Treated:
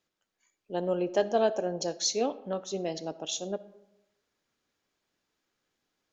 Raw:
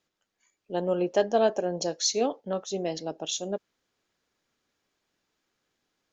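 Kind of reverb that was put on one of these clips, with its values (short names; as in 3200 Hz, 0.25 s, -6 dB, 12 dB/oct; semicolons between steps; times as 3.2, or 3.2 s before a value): digital reverb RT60 0.93 s, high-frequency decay 0.5×, pre-delay 20 ms, DRR 16.5 dB; gain -2.5 dB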